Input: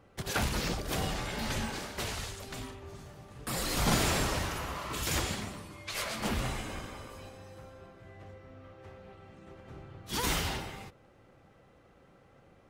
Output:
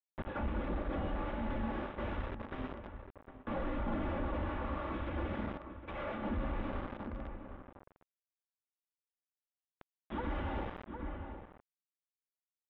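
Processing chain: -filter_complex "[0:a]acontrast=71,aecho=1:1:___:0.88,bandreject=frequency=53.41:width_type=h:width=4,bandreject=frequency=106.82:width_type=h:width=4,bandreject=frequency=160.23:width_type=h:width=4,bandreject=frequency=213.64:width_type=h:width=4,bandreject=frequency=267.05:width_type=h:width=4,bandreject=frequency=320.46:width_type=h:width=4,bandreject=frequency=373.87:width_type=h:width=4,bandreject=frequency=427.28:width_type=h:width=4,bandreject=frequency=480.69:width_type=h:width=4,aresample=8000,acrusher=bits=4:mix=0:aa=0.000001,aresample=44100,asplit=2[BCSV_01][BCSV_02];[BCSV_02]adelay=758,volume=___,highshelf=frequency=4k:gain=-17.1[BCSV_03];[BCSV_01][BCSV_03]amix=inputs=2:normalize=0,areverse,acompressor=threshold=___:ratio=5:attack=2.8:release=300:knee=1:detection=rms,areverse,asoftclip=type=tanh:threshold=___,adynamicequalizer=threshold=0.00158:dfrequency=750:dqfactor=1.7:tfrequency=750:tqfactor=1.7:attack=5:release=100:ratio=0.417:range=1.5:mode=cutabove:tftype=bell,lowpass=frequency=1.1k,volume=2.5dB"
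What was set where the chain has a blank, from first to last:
3.5, -18dB, -30dB, -30.5dB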